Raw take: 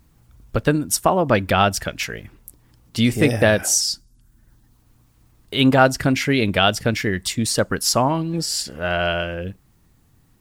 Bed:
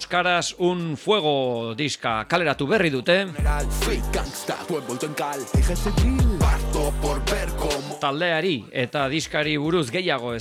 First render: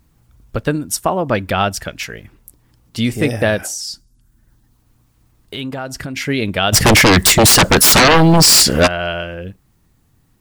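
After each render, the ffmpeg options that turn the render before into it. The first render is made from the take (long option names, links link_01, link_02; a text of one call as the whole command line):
ffmpeg -i in.wav -filter_complex "[0:a]asettb=1/sr,asplit=3[link_01][link_02][link_03];[link_01]atrim=end=3.664[link_04];[link_02]atrim=start=3.66:end=6.17,asetpts=PTS-STARTPTS,afade=type=in:duration=0.004:curve=qsin,afade=type=out:start_time=2.506:duration=0.004:curve=qsin,acompressor=threshold=-22dB:ratio=6:attack=3.2:release=140:knee=1:detection=peak[link_05];[link_03]atrim=start=6.166[link_06];[link_04][link_05]acrossfade=duration=0.004:curve1=hsin:curve2=qsin[link_07];[link_07][link_06]acrossfade=duration=0.004:curve1=qsin:curve2=hsin,asplit=3[link_08][link_09][link_10];[link_08]afade=type=out:start_time=6.72:duration=0.02[link_11];[link_09]aeval=exprs='0.531*sin(PI/2*7.08*val(0)/0.531)':channel_layout=same,afade=type=in:start_time=6.72:duration=0.02,afade=type=out:start_time=8.86:duration=0.02[link_12];[link_10]afade=type=in:start_time=8.86:duration=0.02[link_13];[link_11][link_12][link_13]amix=inputs=3:normalize=0" out.wav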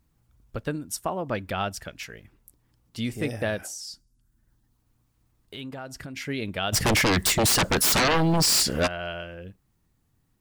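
ffmpeg -i in.wav -af "volume=-12dB" out.wav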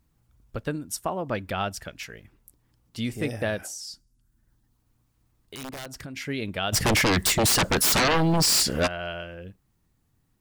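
ffmpeg -i in.wav -filter_complex "[0:a]asettb=1/sr,asplit=3[link_01][link_02][link_03];[link_01]atrim=end=5.554[link_04];[link_02]atrim=start=5.55:end=6.01,asetpts=PTS-STARTPTS,afade=type=in:duration=0.004:curve=qsin,afade=type=out:start_time=0.456:duration=0.004:curve=qsin,aeval=exprs='(mod(33.5*val(0)+1,2)-1)/33.5':channel_layout=same[link_05];[link_03]atrim=start=6.006[link_06];[link_04][link_05]acrossfade=duration=0.004:curve1=hsin:curve2=qsin[link_07];[link_07][link_06]acrossfade=duration=0.004:curve1=qsin:curve2=hsin" out.wav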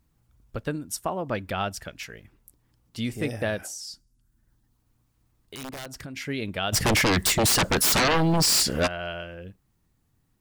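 ffmpeg -i in.wav -af anull out.wav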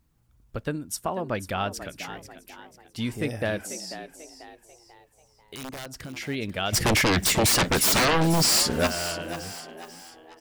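ffmpeg -i in.wav -filter_complex "[0:a]asplit=5[link_01][link_02][link_03][link_04][link_05];[link_02]adelay=491,afreqshift=79,volume=-12dB[link_06];[link_03]adelay=982,afreqshift=158,volume=-19.5dB[link_07];[link_04]adelay=1473,afreqshift=237,volume=-27.1dB[link_08];[link_05]adelay=1964,afreqshift=316,volume=-34.6dB[link_09];[link_01][link_06][link_07][link_08][link_09]amix=inputs=5:normalize=0" out.wav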